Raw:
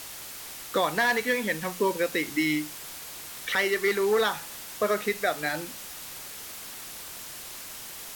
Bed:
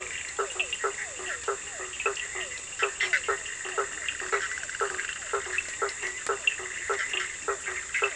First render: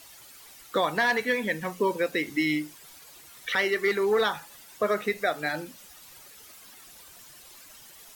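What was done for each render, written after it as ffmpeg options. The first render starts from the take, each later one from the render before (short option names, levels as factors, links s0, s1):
-af "afftdn=nr=12:nf=-41"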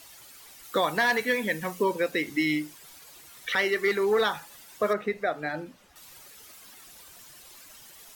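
-filter_complex "[0:a]asettb=1/sr,asplit=3[s0][s1][s2];[s0]atrim=end=0.634[s3];[s1]atrim=start=0.63:end=1.84,asetpts=PTS-STARTPTS,afade=t=in:d=0.004:c=qsin,afade=t=out:st=1.206:d=0.004:c=qsin,highshelf=f=7200:g=5.5[s4];[s2]atrim=start=1.836[s5];[s3][s4]acrossfade=d=0.004:c1=hsin:c2=qsin[s6];[s6][s5]acrossfade=d=0.004:c1=qsin:c2=hsin,asettb=1/sr,asplit=3[s7][s8][s9];[s7]atrim=end=4.934[s10];[s8]atrim=start=4.93:end=5.96,asetpts=PTS-STARTPTS,afade=t=in:d=0.004:c=qsin,afade=t=out:st=1.026:d=0.004:c=qsin,lowpass=f=1500:p=1[s11];[s9]atrim=start=5.956[s12];[s10][s11]acrossfade=d=0.004:c1=hsin:c2=qsin[s13];[s13][s12]acrossfade=d=0.004:c1=qsin:c2=hsin"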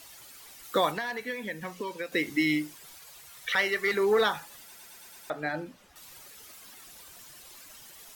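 -filter_complex "[0:a]asettb=1/sr,asplit=3[s0][s1][s2];[s0]atrim=end=0.914[s3];[s1]atrim=start=0.91:end=2.12,asetpts=PTS-STARTPTS,afade=t=in:d=0.004:c=qsin,afade=t=out:st=1.206:d=0.004:c=qsin,acrossover=split=1500|6100[s4][s5][s6];[s4]acompressor=threshold=0.0158:ratio=4[s7];[s5]acompressor=threshold=0.0112:ratio=4[s8];[s6]acompressor=threshold=0.00141:ratio=4[s9];[s7][s8][s9]amix=inputs=3:normalize=0[s10];[s2]atrim=start=2.116[s11];[s3][s10]acrossfade=d=0.004:c1=hsin:c2=qsin[s12];[s12][s11]acrossfade=d=0.004:c1=qsin:c2=hsin,asettb=1/sr,asplit=3[s13][s14][s15];[s13]atrim=end=2.954[s16];[s14]atrim=start=2.95:end=3.94,asetpts=PTS-STARTPTS,afade=t=in:d=0.004:c=qsin,afade=t=out:st=0.986:d=0.004:c=qsin,equalizer=f=300:t=o:w=0.64:g=-13.5[s17];[s15]atrim=start=3.936[s18];[s16][s17]acrossfade=d=0.004:c1=hsin:c2=qsin[s19];[s19][s18]acrossfade=d=0.004:c1=qsin:c2=hsin,asplit=7[s20][s21][s22][s23][s24][s25][s26];[s20]atrim=end=4.752[s27];[s21]atrim=start=4.638:end=4.752[s28];[s22]atrim=start=4.638:end=4.752[s29];[s23]atrim=start=4.638:end=4.752[s30];[s24]atrim=start=4.638:end=4.752[s31];[s25]atrim=start=4.638:end=4.752[s32];[s26]atrim=start=5.298[s33];[s27][s28]acrossfade=d=0.004:c1=hsin:c2=hsin[s34];[s34][s29]acrossfade=d=0.004:c1=hsin:c2=hsin[s35];[s35][s30]acrossfade=d=0.004:c1=hsin:c2=hsin[s36];[s36][s31]acrossfade=d=0.004:c1=hsin:c2=hsin[s37];[s37][s32]acrossfade=d=0.004:c1=hsin:c2=hsin[s38];[s38][s33]acrossfade=d=0.004:c1=hsin:c2=hsin"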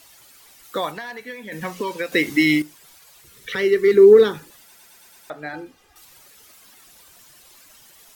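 -filter_complex "[0:a]asettb=1/sr,asplit=3[s0][s1][s2];[s0]atrim=end=3.244[s3];[s1]atrim=start=3.24:end=4.51,asetpts=PTS-STARTPTS,afade=t=in:d=0.004:c=qsin,afade=t=out:st=1.266:d=0.004:c=qsin,lowshelf=f=530:t=q:w=3:g=10[s4];[s2]atrim=start=4.506[s5];[s3][s4]acrossfade=d=0.004:c1=hsin:c2=qsin[s6];[s6][s5]acrossfade=d=0.004:c1=qsin:c2=hsin,asettb=1/sr,asplit=3[s7][s8][s9];[s7]atrim=end=5.534[s10];[s8]atrim=start=5.53:end=6.05,asetpts=PTS-STARTPTS,afade=t=in:d=0.004:c=qsin,afade=t=out:st=0.516:d=0.004:c=qsin,aecho=1:1:2.5:0.7,atrim=end_sample=22932[s11];[s9]atrim=start=6.046[s12];[s10][s11]acrossfade=d=0.004:c1=hsin:c2=qsin[s13];[s13][s12]acrossfade=d=0.004:c1=qsin:c2=hsin,asplit=3[s14][s15][s16];[s14]atrim=end=1.522[s17];[s15]atrim=start=1.518:end=2.622,asetpts=PTS-STARTPTS,volume=2.82[s18];[s16]atrim=start=2.618[s19];[s17][s18]acrossfade=d=0.004:c1=hsin:c2=hsin[s20];[s20][s19]acrossfade=d=0.004:c1=hsin:c2=hsin"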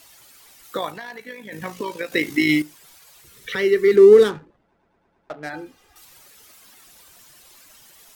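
-filter_complex "[0:a]asettb=1/sr,asplit=3[s0][s1][s2];[s0]atrim=end=0.774[s3];[s1]atrim=start=0.77:end=2.49,asetpts=PTS-STARTPTS,afade=t=in:d=0.004:c=qsin,afade=t=out:st=1.716:d=0.004:c=qsin,tremolo=f=54:d=0.519[s4];[s2]atrim=start=2.486[s5];[s3][s4]acrossfade=d=0.004:c1=hsin:c2=qsin[s6];[s6][s5]acrossfade=d=0.004:c1=qsin:c2=hsin,asettb=1/sr,asplit=3[s7][s8][s9];[s7]atrim=end=3.964[s10];[s8]atrim=start=3.96:end=5.5,asetpts=PTS-STARTPTS,afade=t=in:d=0.004:c=qsin,afade=t=out:st=1.536:d=0.004:c=qsin,adynamicsmooth=sensitivity=7:basefreq=560[s11];[s9]atrim=start=5.496[s12];[s10][s11]acrossfade=d=0.004:c1=hsin:c2=qsin[s13];[s13][s12]acrossfade=d=0.004:c1=qsin:c2=hsin"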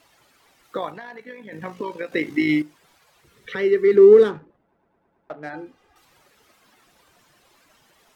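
-af "lowpass=f=1500:p=1,lowshelf=f=72:g=-8.5"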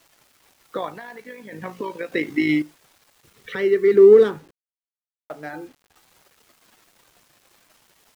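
-af "acrusher=bits=8:mix=0:aa=0.000001"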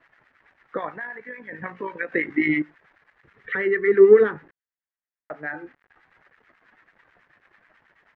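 -filter_complex "[0:a]lowpass=f=1800:t=q:w=4,acrossover=split=1000[s0][s1];[s0]aeval=exprs='val(0)*(1-0.7/2+0.7/2*cos(2*PI*9.2*n/s))':c=same[s2];[s1]aeval=exprs='val(0)*(1-0.7/2-0.7/2*cos(2*PI*9.2*n/s))':c=same[s3];[s2][s3]amix=inputs=2:normalize=0"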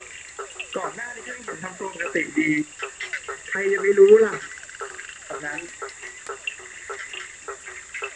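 -filter_complex "[1:a]volume=0.596[s0];[0:a][s0]amix=inputs=2:normalize=0"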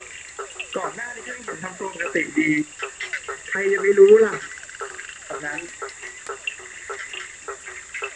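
-af "volume=1.19,alimiter=limit=0.708:level=0:latency=1"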